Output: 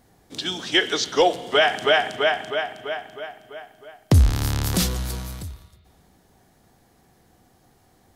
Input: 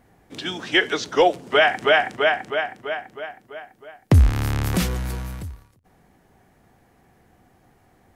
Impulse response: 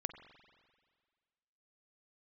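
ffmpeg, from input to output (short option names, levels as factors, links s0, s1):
-filter_complex "[0:a]asplit=2[s0][s1];[s1]highshelf=f=2800:t=q:w=1.5:g=10[s2];[1:a]atrim=start_sample=2205[s3];[s2][s3]afir=irnorm=-1:irlink=0,volume=1.12[s4];[s0][s4]amix=inputs=2:normalize=0,volume=0.447"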